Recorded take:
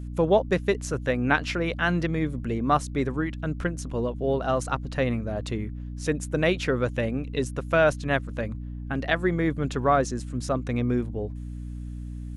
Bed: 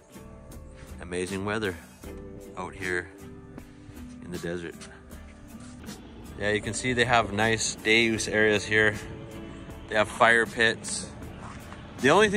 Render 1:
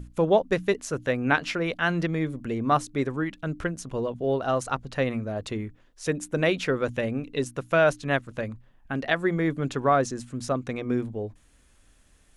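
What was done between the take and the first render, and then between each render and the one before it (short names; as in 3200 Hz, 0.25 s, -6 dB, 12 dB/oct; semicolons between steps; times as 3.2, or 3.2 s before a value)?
notches 60/120/180/240/300 Hz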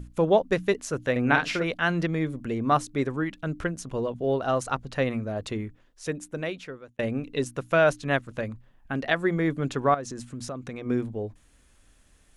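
1.11–1.64 doubler 49 ms -5 dB; 5.6–6.99 fade out; 9.94–10.86 compressor 4:1, threshold -32 dBFS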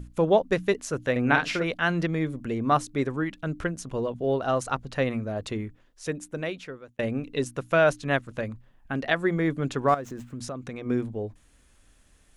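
9.88–10.33 median filter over 9 samples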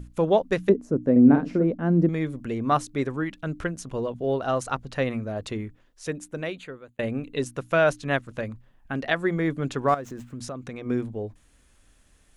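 0.69–2.09 EQ curve 110 Hz 0 dB, 240 Hz +13 dB, 1000 Hz -8 dB, 3400 Hz -25 dB, 5200 Hz -19 dB; 6.55–7.39 Butterworth band-stop 5400 Hz, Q 3.6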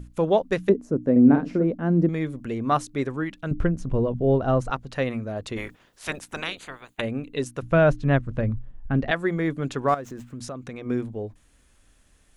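3.51–4.71 tilt -3.5 dB/oct; 5.56–7 spectral limiter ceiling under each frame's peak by 25 dB; 7.62–9.11 RIAA curve playback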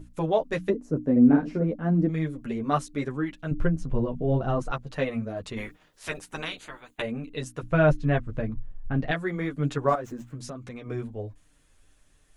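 chorus voices 6, 0.83 Hz, delay 10 ms, depth 3.6 ms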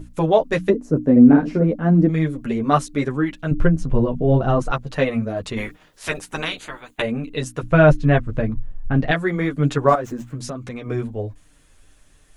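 gain +8 dB; limiter -2 dBFS, peak gain reduction 2 dB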